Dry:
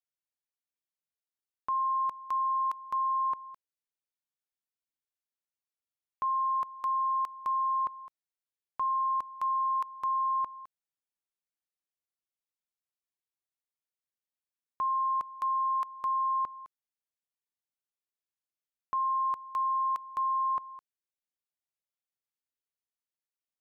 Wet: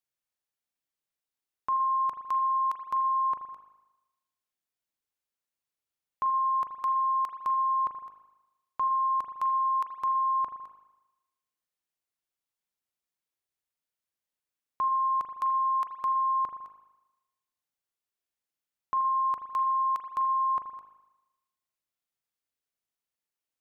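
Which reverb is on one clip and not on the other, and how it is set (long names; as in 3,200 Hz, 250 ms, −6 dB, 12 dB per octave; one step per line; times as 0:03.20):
spring reverb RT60 1 s, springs 38 ms, chirp 65 ms, DRR 6 dB
level +2.5 dB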